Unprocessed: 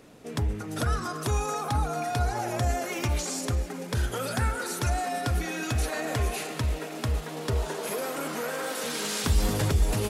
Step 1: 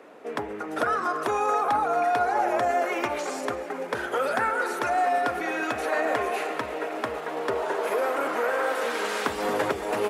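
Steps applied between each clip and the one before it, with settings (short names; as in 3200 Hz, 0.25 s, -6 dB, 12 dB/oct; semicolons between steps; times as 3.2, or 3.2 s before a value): HPF 150 Hz 12 dB/oct; three-band isolator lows -22 dB, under 340 Hz, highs -17 dB, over 2300 Hz; gain +8.5 dB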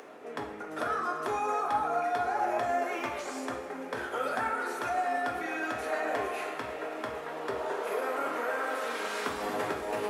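upward compressor, threshold -35 dBFS; reverb, pre-delay 3 ms, DRR 1.5 dB; gain -8 dB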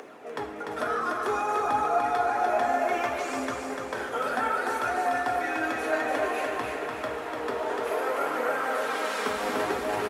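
phaser 0.59 Hz, delay 4.8 ms, feedback 34%; feedback echo 0.295 s, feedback 44%, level -4 dB; gain +2 dB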